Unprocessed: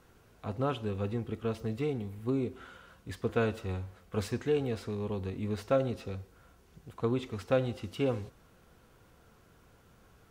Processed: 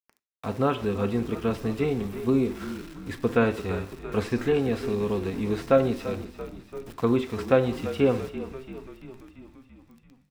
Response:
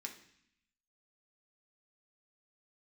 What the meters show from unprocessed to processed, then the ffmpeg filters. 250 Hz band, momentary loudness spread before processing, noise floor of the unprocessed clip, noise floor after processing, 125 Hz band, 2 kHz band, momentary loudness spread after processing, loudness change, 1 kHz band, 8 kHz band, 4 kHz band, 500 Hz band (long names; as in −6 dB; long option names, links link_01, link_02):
+9.0 dB, 13 LU, −62 dBFS, −61 dBFS, +4.0 dB, +8.5 dB, 16 LU, +7.5 dB, +8.0 dB, can't be measured, +5.5 dB, +7.5 dB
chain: -filter_complex "[0:a]aeval=exprs='val(0)*gte(abs(val(0)),0.00316)':channel_layout=same,acrossover=split=2800[link_01][link_02];[link_02]acompressor=threshold=-54dB:ratio=4:attack=1:release=60[link_03];[link_01][link_03]amix=inputs=2:normalize=0,asplit=8[link_04][link_05][link_06][link_07][link_08][link_09][link_10][link_11];[link_05]adelay=339,afreqshift=-41,volume=-13dB[link_12];[link_06]adelay=678,afreqshift=-82,volume=-17dB[link_13];[link_07]adelay=1017,afreqshift=-123,volume=-21dB[link_14];[link_08]adelay=1356,afreqshift=-164,volume=-25dB[link_15];[link_09]adelay=1695,afreqshift=-205,volume=-29.1dB[link_16];[link_10]adelay=2034,afreqshift=-246,volume=-33.1dB[link_17];[link_11]adelay=2373,afreqshift=-287,volume=-37.1dB[link_18];[link_04][link_12][link_13][link_14][link_15][link_16][link_17][link_18]amix=inputs=8:normalize=0,asplit=2[link_19][link_20];[1:a]atrim=start_sample=2205,atrim=end_sample=4410[link_21];[link_20][link_21]afir=irnorm=-1:irlink=0,volume=-2dB[link_22];[link_19][link_22]amix=inputs=2:normalize=0,volume=6dB"